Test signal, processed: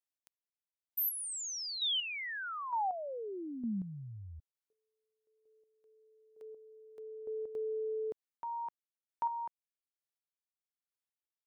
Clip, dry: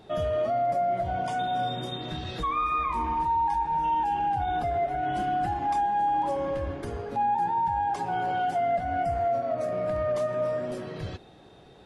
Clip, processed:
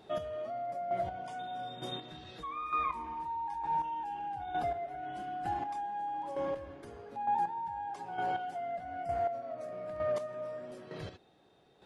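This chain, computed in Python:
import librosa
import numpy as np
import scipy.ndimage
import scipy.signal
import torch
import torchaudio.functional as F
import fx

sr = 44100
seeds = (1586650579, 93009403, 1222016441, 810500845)

y = fx.low_shelf(x, sr, hz=120.0, db=-10.5)
y = fx.chopper(y, sr, hz=1.1, depth_pct=60, duty_pct=20)
y = y * 10.0 ** (-4.0 / 20.0)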